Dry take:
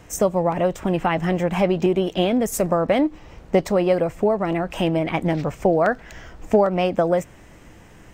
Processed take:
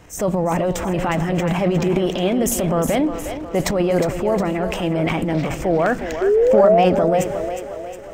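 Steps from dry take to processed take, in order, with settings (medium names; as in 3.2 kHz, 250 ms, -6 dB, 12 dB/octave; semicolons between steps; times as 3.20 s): painted sound rise, 6.21–6.85 s, 370–750 Hz -14 dBFS; transient shaper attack -5 dB, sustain +10 dB; two-band feedback delay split 310 Hz, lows 98 ms, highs 360 ms, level -9 dB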